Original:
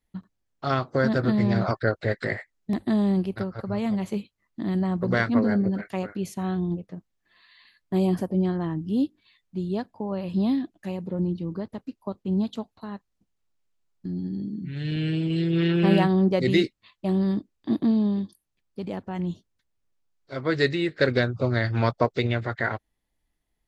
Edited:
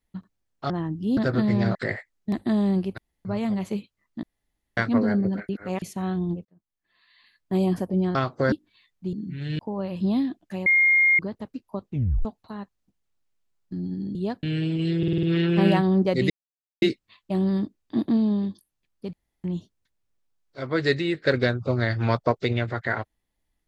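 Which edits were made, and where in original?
0:00.70–0:01.07: swap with 0:08.56–0:09.03
0:01.65–0:02.16: remove
0:03.39–0:03.66: fill with room tone
0:04.64–0:05.18: fill with room tone
0:05.90–0:06.23: reverse
0:06.86–0:07.97: fade in
0:09.64–0:09.92: swap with 0:14.48–0:14.94
0:10.99–0:11.52: beep over 2,130 Hz −15 dBFS
0:12.22: tape stop 0.36 s
0:15.49: stutter 0.05 s, 6 plays
0:16.56: splice in silence 0.52 s
0:18.87–0:19.18: fill with room tone

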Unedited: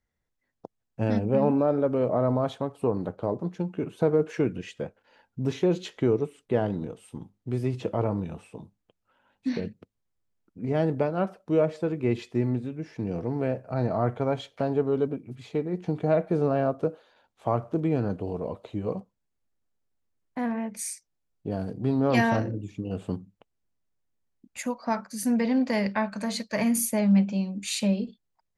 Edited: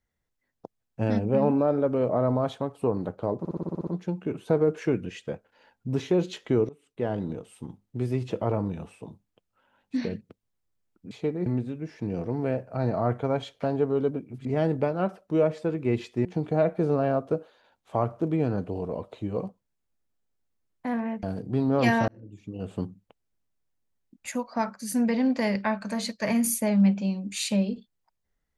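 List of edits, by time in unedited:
0:03.39: stutter 0.06 s, 9 plays
0:06.21–0:06.80: fade in, from −22.5 dB
0:10.63–0:12.43: swap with 0:15.42–0:15.77
0:20.75–0:21.54: remove
0:22.39–0:23.12: fade in

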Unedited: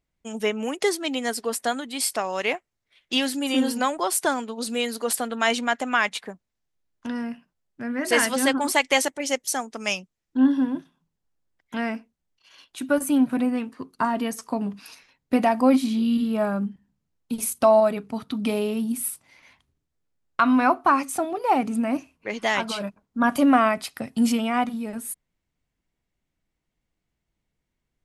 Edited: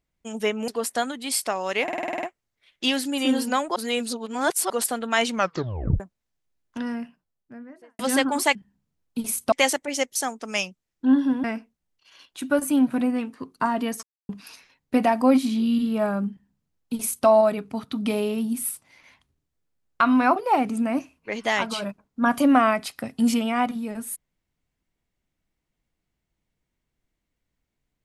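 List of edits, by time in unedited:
0:00.68–0:01.37: remove
0:02.52: stutter 0.05 s, 9 plays
0:04.05–0:04.99: reverse
0:05.60: tape stop 0.69 s
0:07.17–0:08.28: fade out and dull
0:10.76–0:11.83: remove
0:14.42–0:14.68: silence
0:16.69–0:17.66: duplicate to 0:08.84
0:20.75–0:21.34: remove

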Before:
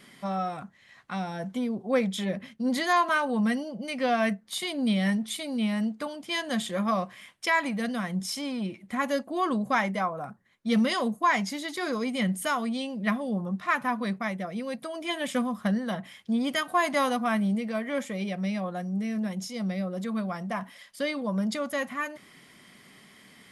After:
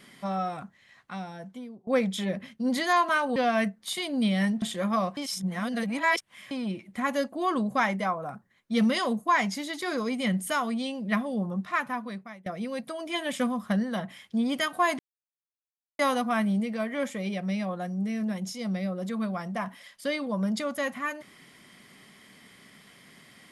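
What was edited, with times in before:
0:00.60–0:01.87: fade out, to −19.5 dB
0:03.36–0:04.01: remove
0:05.27–0:06.57: remove
0:07.12–0:08.46: reverse
0:13.53–0:14.41: fade out, to −22.5 dB
0:16.94: splice in silence 1.00 s

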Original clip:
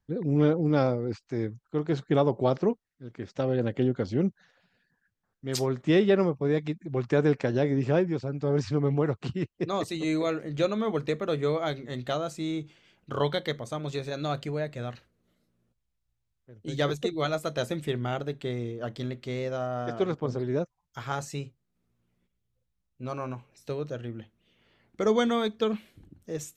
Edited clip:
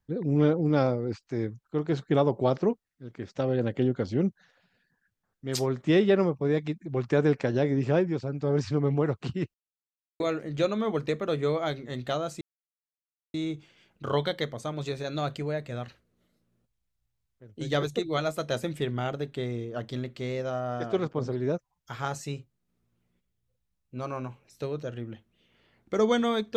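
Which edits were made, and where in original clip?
0:09.54–0:10.20: silence
0:12.41: splice in silence 0.93 s

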